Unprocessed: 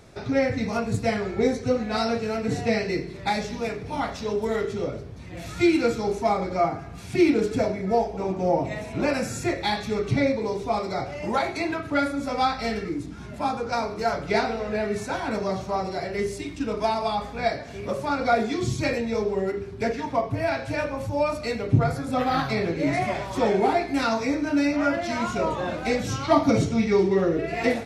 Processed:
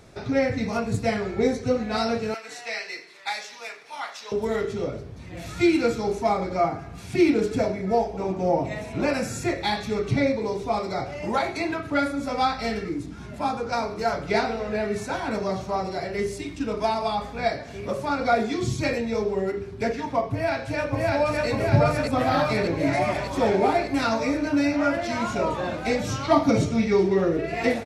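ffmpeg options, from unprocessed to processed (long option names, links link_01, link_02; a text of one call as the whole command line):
ffmpeg -i in.wav -filter_complex "[0:a]asettb=1/sr,asplit=3[link_01][link_02][link_03];[link_01]atrim=end=2.344[link_04];[link_02]atrim=start=2.34:end=4.32,asetpts=PTS-STARTPTS,afade=type=in:duration=0.004:curve=qsin,afade=type=out:start_time=1.976:duration=0.004:curve=qsin,highpass=1100[link_05];[link_03]atrim=start=4.316[link_06];[link_04][link_05]acrossfade=duration=0.004:curve1=hsin:curve2=qsin[link_07];[link_07][link_06]acrossfade=duration=0.004:curve1=qsin:curve2=hsin,asplit=2[link_08][link_09];[link_09]afade=type=in:start_time=20.32:duration=0.01,afade=type=out:start_time=21.47:duration=0.01,aecho=0:1:600|1200|1800|2400|3000|3600|4200|4800|5400|6000|6600|7200:1|0.75|0.5625|0.421875|0.316406|0.237305|0.177979|0.133484|0.100113|0.0750847|0.0563135|0.0422351[link_10];[link_08][link_10]amix=inputs=2:normalize=0" out.wav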